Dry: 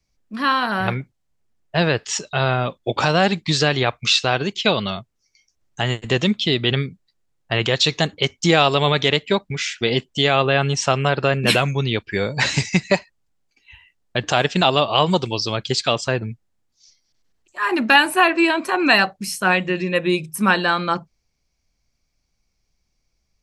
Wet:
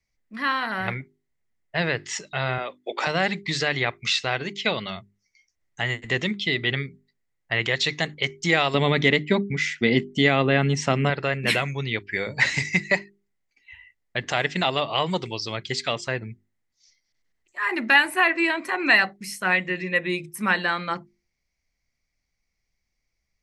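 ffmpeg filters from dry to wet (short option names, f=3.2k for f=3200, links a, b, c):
-filter_complex "[0:a]asettb=1/sr,asplit=3[a][b][c];[a]atrim=end=2.584[d];[b]atrim=start=2.58:end=3.07,asetpts=PTS-STARTPTS,afade=t=in:d=0.004:c=qsin,afade=t=out:st=0.486:d=0.004:c=qsin,highpass=f=300:w=0.5412,highpass=f=300:w=1.3066[e];[c]atrim=start=3.066[f];[d][e]acrossfade=d=0.004:c1=hsin:c2=qsin[g];[g][f]acrossfade=d=0.004:c1=qsin:c2=hsin,asettb=1/sr,asplit=3[h][i][j];[h]atrim=end=8.744[k];[i]atrim=start=8.74:end=11.1,asetpts=PTS-STARTPTS,afade=t=in:d=0.004:c=qsin,afade=t=out:st=2.356:d=0.004:c=qsin,equalizer=f=230:w=0.93:g=13.5[l];[j]atrim=start=11.096[m];[k][l]acrossfade=d=0.004:c1=hsin:c2=qsin[n];[n][m]acrossfade=d=0.004:c1=qsin:c2=hsin,equalizer=f=2k:t=o:w=0.32:g=13.5,bandreject=f=50:t=h:w=6,bandreject=f=100:t=h:w=6,bandreject=f=150:t=h:w=6,bandreject=f=200:t=h:w=6,bandreject=f=250:t=h:w=6,bandreject=f=300:t=h:w=6,bandreject=f=350:t=h:w=6,bandreject=f=400:t=h:w=6,volume=-7.5dB"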